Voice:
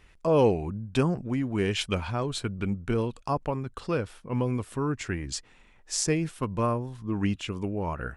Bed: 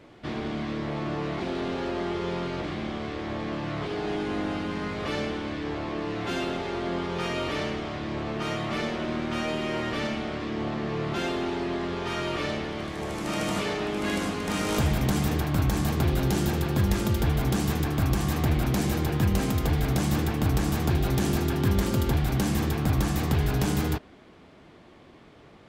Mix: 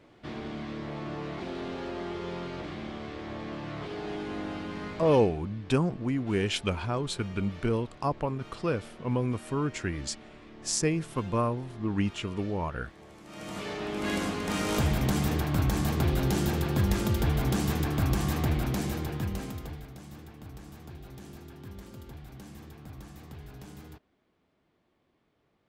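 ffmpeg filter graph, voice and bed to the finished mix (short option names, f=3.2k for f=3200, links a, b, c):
-filter_complex "[0:a]adelay=4750,volume=-1dB[a];[1:a]volume=10.5dB,afade=t=out:st=4.88:d=0.5:silence=0.237137,afade=t=in:st=13.29:d=0.85:silence=0.149624,afade=t=out:st=18.26:d=1.64:silence=0.112202[b];[a][b]amix=inputs=2:normalize=0"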